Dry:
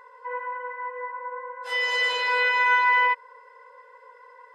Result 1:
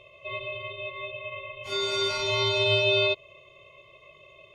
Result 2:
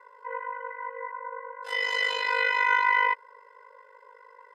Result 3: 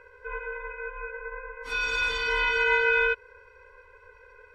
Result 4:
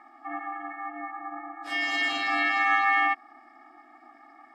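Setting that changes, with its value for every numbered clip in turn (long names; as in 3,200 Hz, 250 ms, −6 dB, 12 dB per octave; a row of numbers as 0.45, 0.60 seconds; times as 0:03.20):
ring modulation, frequency: 1,600, 25, 530, 200 Hertz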